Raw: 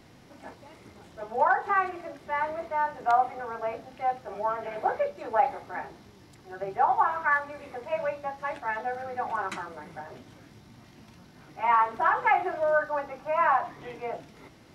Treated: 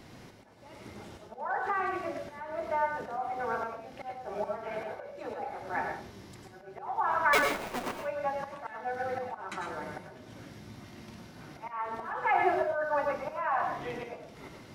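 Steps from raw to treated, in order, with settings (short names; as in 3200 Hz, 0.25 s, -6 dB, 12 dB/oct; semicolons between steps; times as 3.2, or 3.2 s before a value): 7.33–7.96 cycle switcher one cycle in 2, inverted; limiter -18.5 dBFS, peak gain reduction 7 dB; 1.57–3 compressor, threshold -30 dBFS, peak gain reduction 7.5 dB; auto swell 0.419 s; reverb RT60 0.30 s, pre-delay 87 ms, DRR 3.5 dB; gain +2.5 dB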